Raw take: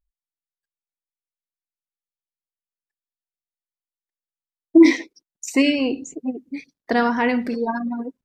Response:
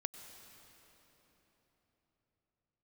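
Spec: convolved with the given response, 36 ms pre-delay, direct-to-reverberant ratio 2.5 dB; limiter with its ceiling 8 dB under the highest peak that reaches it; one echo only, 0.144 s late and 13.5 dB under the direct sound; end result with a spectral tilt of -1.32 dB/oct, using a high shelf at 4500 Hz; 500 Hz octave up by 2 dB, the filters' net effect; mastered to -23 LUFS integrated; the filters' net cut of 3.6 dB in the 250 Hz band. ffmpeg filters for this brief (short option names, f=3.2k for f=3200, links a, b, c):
-filter_complex "[0:a]equalizer=f=250:t=o:g=-8,equalizer=f=500:t=o:g=6,highshelf=f=4.5k:g=-3.5,alimiter=limit=-12dB:level=0:latency=1,aecho=1:1:144:0.211,asplit=2[a][b];[1:a]atrim=start_sample=2205,adelay=36[c];[b][c]afir=irnorm=-1:irlink=0,volume=-1dB[d];[a][d]amix=inputs=2:normalize=0,volume=-0.5dB"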